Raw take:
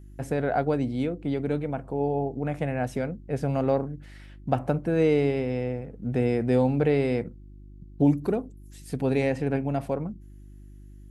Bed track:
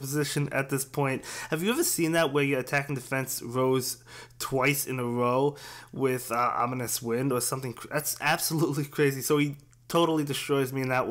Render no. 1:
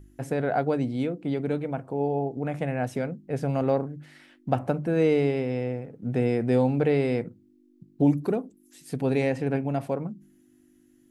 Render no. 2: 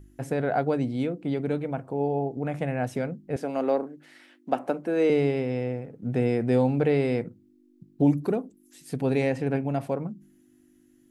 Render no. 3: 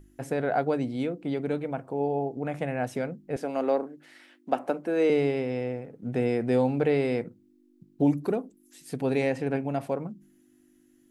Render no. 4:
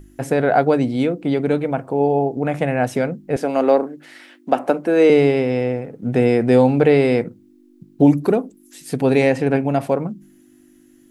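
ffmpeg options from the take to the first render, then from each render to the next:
-af "bandreject=f=50:t=h:w=4,bandreject=f=100:t=h:w=4,bandreject=f=150:t=h:w=4,bandreject=f=200:t=h:w=4"
-filter_complex "[0:a]asettb=1/sr,asplit=3[s0][s1][s2];[s0]atrim=end=3.364[s3];[s1]atrim=start=3.36:end=5.1,asetpts=PTS-STARTPTS,afade=t=in:d=0.004:c=qsin,afade=t=out:st=1.736:d=0.004:c=qsin,highpass=f=240:w=0.5412,highpass=f=240:w=1.3066[s4];[s2]atrim=start=5.096[s5];[s3][s4]acrossfade=d=0.004:c1=hsin:c2=qsin[s6];[s6][s5]acrossfade=d=0.004:c1=qsin:c2=hsin"
-af "equalizer=f=83:w=0.51:g=-6"
-af "volume=3.35,alimiter=limit=0.794:level=0:latency=1"

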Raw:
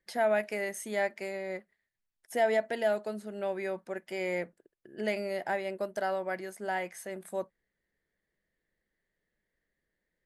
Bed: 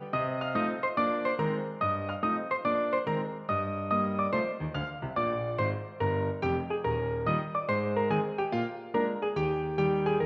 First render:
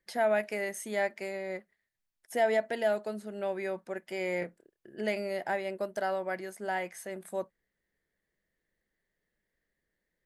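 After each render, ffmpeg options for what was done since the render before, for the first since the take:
-filter_complex "[0:a]asettb=1/sr,asplit=3[s0][s1][s2];[s0]atrim=end=4.394[s3];[s1]atrim=start=4.39:end=4.94,asetpts=PTS-STARTPTS,afade=t=in:d=0.004:c=qsin,afade=t=out:st=0.546:d=0.004:c=qsin,asplit=2[s4][s5];[s5]adelay=28,volume=0.531[s6];[s4][s6]amix=inputs=2:normalize=0,atrim=end_sample=24255[s7];[s2]atrim=start=4.936[s8];[s3][s7]acrossfade=d=0.004:c1=hsin:c2=qsin[s9];[s9][s8]acrossfade=d=0.004:c1=qsin:c2=hsin"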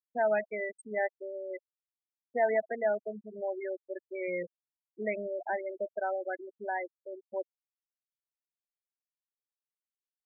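-af "afftfilt=real='re*gte(hypot(re,im),0.0631)':imag='im*gte(hypot(re,im),0.0631)':win_size=1024:overlap=0.75,lowshelf=f=140:g=-10"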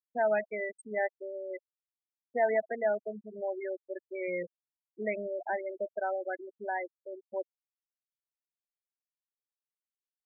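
-af anull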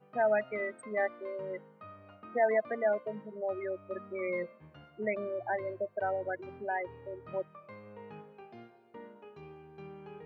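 -filter_complex "[1:a]volume=0.0891[s0];[0:a][s0]amix=inputs=2:normalize=0"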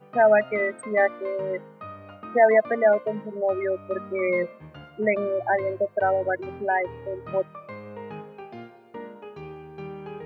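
-af "volume=3.35"

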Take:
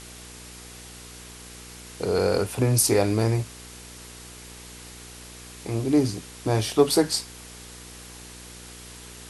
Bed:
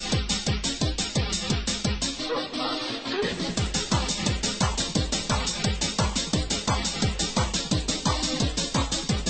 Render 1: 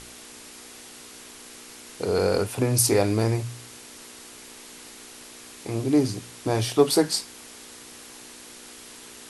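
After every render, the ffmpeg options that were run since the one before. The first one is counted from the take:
-af "bandreject=f=60:t=h:w=4,bandreject=f=120:t=h:w=4,bandreject=f=180:t=h:w=4"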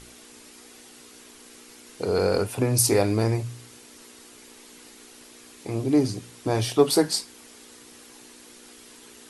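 -af "afftdn=nr=6:nf=-45"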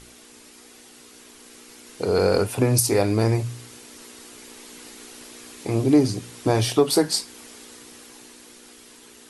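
-af "dynaudnorm=f=280:g=13:m=3.76,alimiter=limit=0.422:level=0:latency=1:release=403"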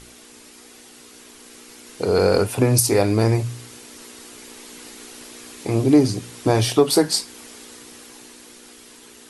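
-af "volume=1.33"

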